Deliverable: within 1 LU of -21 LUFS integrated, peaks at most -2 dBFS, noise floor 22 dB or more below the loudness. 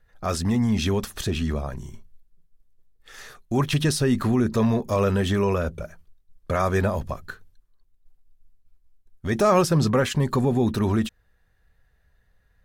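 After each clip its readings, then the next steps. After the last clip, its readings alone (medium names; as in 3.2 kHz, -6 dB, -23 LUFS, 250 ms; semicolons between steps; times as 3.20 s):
loudness -23.5 LUFS; peak level -8.0 dBFS; loudness target -21.0 LUFS
-> trim +2.5 dB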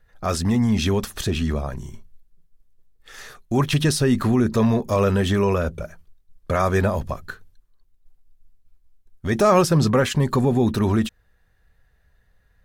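loudness -21.0 LUFS; peak level -5.5 dBFS; noise floor -62 dBFS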